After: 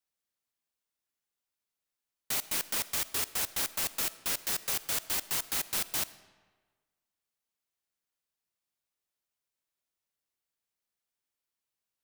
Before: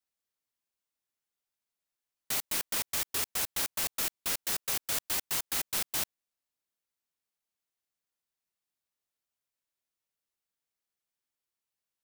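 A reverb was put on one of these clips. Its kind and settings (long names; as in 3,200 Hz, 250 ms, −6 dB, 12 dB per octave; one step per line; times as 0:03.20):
comb and all-pass reverb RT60 1.4 s, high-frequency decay 0.75×, pre-delay 15 ms, DRR 16 dB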